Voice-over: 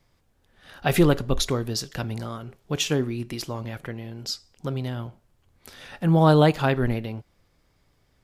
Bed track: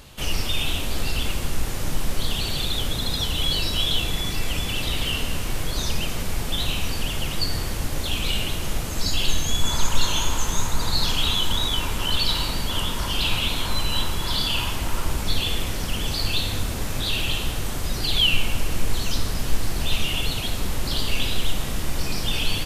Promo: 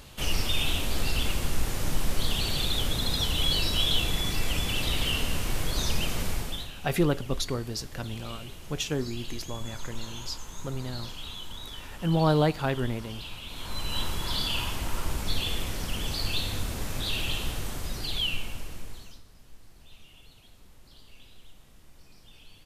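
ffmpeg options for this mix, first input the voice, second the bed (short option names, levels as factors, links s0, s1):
-filter_complex "[0:a]adelay=6000,volume=0.501[s0];[1:a]volume=2.99,afade=t=out:st=6.26:d=0.44:silence=0.177828,afade=t=in:st=13.46:d=0.61:silence=0.251189,afade=t=out:st=17.51:d=1.71:silence=0.0668344[s1];[s0][s1]amix=inputs=2:normalize=0"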